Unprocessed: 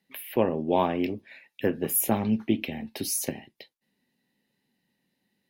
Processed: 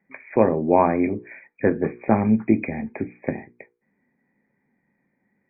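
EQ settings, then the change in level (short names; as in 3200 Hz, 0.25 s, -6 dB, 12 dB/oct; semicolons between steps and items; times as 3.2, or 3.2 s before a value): brick-wall FIR low-pass 2500 Hz; notches 60/120/180/240/300/360/420/480 Hz; +7.0 dB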